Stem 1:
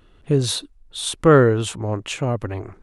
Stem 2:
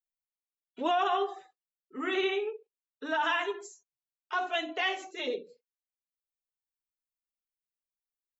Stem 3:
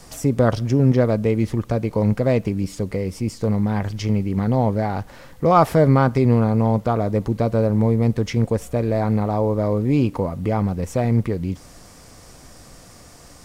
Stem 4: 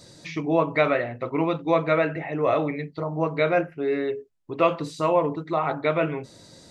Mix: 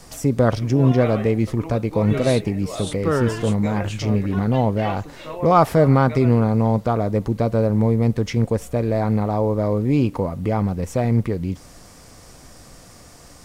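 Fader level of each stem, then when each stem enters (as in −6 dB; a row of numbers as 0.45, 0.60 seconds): −8.5, −7.0, 0.0, −11.0 decibels; 1.80, 0.00, 0.00, 0.25 seconds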